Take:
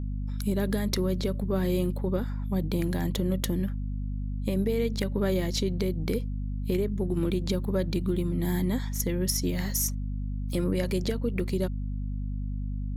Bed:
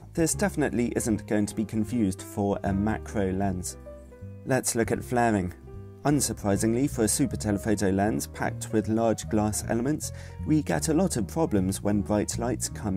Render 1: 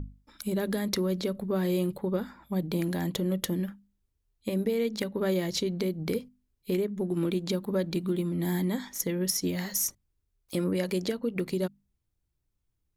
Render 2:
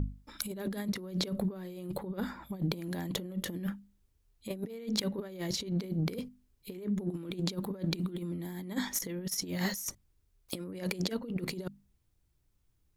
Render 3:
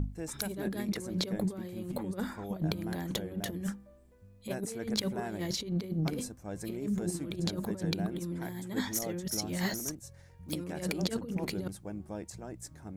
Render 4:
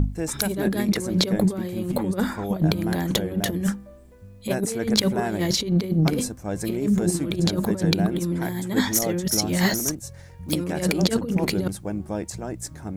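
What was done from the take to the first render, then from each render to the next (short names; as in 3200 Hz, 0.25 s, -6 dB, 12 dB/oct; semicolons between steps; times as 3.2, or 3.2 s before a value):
notches 50/100/150/200/250 Hz
negative-ratio compressor -34 dBFS, ratio -0.5
add bed -15.5 dB
gain +11.5 dB; limiter -2 dBFS, peak gain reduction 2 dB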